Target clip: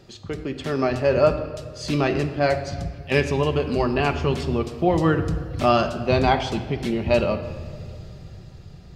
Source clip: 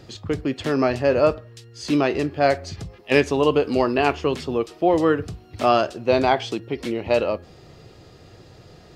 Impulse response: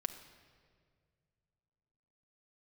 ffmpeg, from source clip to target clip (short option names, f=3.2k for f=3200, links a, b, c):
-filter_complex "[0:a]asubboost=boost=4.5:cutoff=170,dynaudnorm=f=230:g=9:m=11.5dB[a];[1:a]atrim=start_sample=2205[b];[a][b]afir=irnorm=-1:irlink=0,volume=-3.5dB"